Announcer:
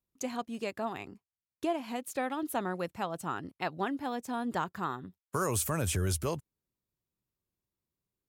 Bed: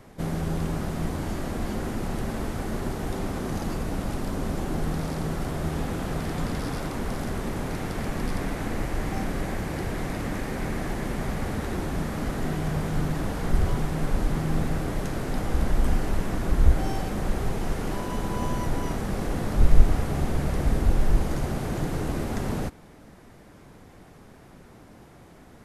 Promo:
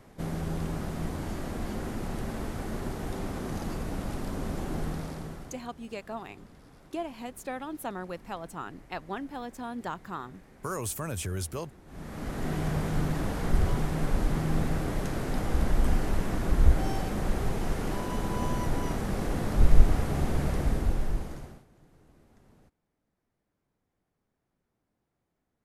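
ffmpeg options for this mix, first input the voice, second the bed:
ffmpeg -i stem1.wav -i stem2.wav -filter_complex "[0:a]adelay=5300,volume=-3dB[link_01];[1:a]volume=18dB,afade=type=out:start_time=4.81:duration=0.83:silence=0.1,afade=type=in:start_time=11.85:duration=0.74:silence=0.0749894,afade=type=out:start_time=20.47:duration=1.18:silence=0.0334965[link_02];[link_01][link_02]amix=inputs=2:normalize=0" out.wav

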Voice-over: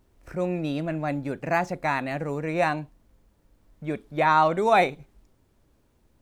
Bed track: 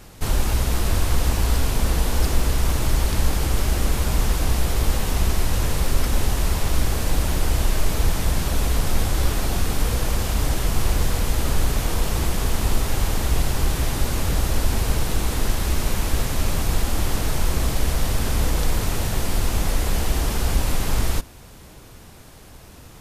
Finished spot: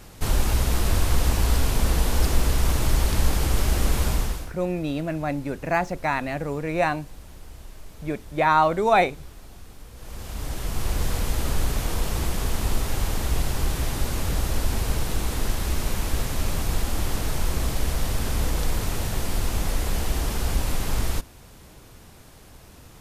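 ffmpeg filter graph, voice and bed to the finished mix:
ffmpeg -i stem1.wav -i stem2.wav -filter_complex "[0:a]adelay=4200,volume=1dB[link_01];[1:a]volume=18dB,afade=type=out:start_time=4.06:duration=0.45:silence=0.0841395,afade=type=in:start_time=9.94:duration=1.19:silence=0.112202[link_02];[link_01][link_02]amix=inputs=2:normalize=0" out.wav

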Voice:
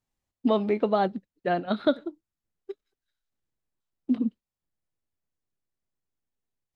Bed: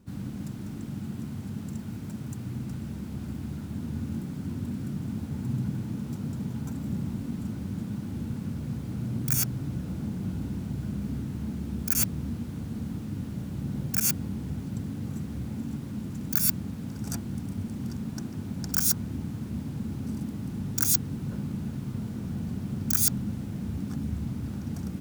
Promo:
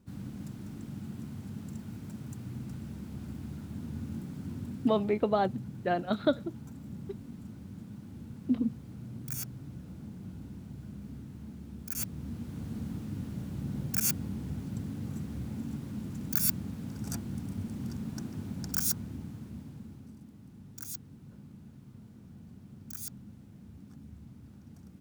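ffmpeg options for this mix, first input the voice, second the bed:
ffmpeg -i stem1.wav -i stem2.wav -filter_complex "[0:a]adelay=4400,volume=-3.5dB[link_01];[1:a]volume=2.5dB,afade=type=out:start_time=4.57:duration=0.62:silence=0.501187,afade=type=in:start_time=11.9:duration=0.78:silence=0.398107,afade=type=out:start_time=18.42:duration=1.73:silence=0.199526[link_02];[link_01][link_02]amix=inputs=2:normalize=0" out.wav

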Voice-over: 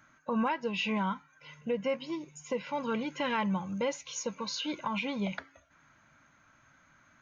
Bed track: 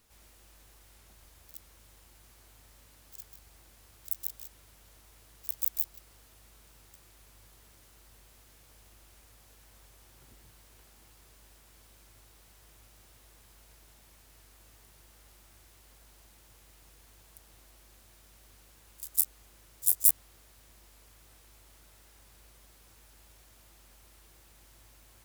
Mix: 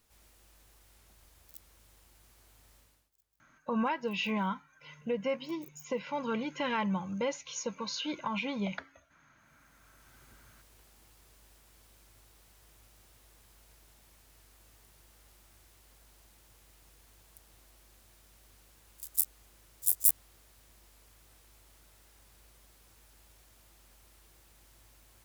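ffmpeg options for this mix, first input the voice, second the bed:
ffmpeg -i stem1.wav -i stem2.wav -filter_complex "[0:a]adelay=3400,volume=-1dB[link_01];[1:a]volume=20.5dB,afade=type=out:start_time=2.75:duration=0.35:silence=0.0707946,afade=type=in:start_time=9.35:duration=0.83:silence=0.0630957[link_02];[link_01][link_02]amix=inputs=2:normalize=0" out.wav

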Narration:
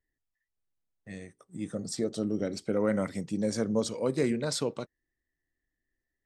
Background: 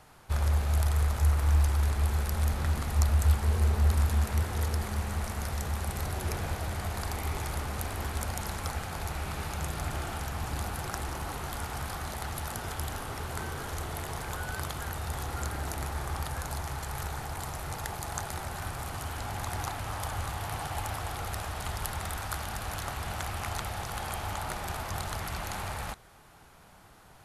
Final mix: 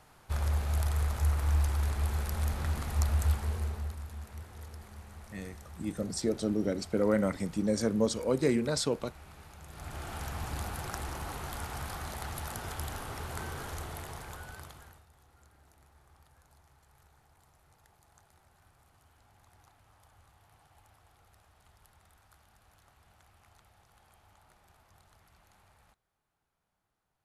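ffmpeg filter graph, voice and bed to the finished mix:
ffmpeg -i stem1.wav -i stem2.wav -filter_complex "[0:a]adelay=4250,volume=0.5dB[link_01];[1:a]volume=10dB,afade=type=out:start_time=3.22:duration=0.75:silence=0.223872,afade=type=in:start_time=9.66:duration=0.6:silence=0.211349,afade=type=out:start_time=13.61:duration=1.45:silence=0.0562341[link_02];[link_01][link_02]amix=inputs=2:normalize=0" out.wav

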